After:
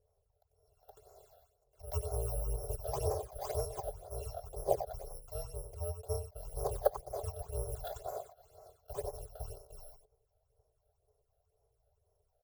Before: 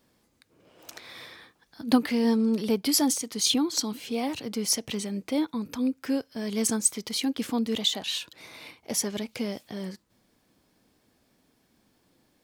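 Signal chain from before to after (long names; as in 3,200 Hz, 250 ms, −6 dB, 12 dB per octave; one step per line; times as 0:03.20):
samples in bit-reversed order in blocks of 256 samples
drawn EQ curve 140 Hz 0 dB, 280 Hz −29 dB, 430 Hz +13 dB, 820 Hz +2 dB, 2,000 Hz −28 dB, 8,000 Hz −22 dB
single-tap delay 94 ms −8.5 dB
all-pass phaser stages 8, 2 Hz, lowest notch 290–3,300 Hz
level +1 dB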